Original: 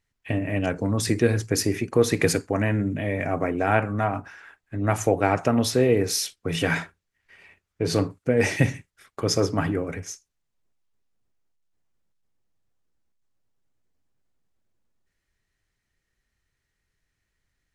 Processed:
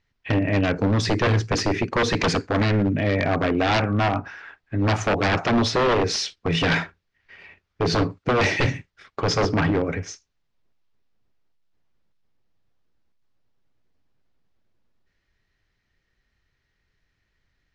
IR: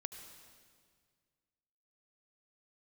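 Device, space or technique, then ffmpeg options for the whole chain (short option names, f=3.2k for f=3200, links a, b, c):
synthesiser wavefolder: -af "aeval=exprs='0.106*(abs(mod(val(0)/0.106+3,4)-2)-1)':c=same,lowpass=f=5.3k:w=0.5412,lowpass=f=5.3k:w=1.3066,volume=5.5dB"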